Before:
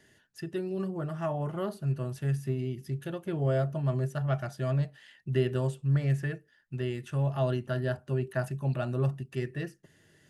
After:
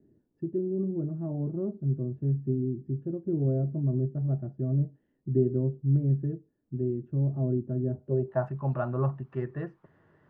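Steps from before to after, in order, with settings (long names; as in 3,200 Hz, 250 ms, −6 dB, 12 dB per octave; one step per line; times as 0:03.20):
background noise white −68 dBFS
low-pass filter sweep 310 Hz → 1,100 Hz, 0:07.94–0:08.47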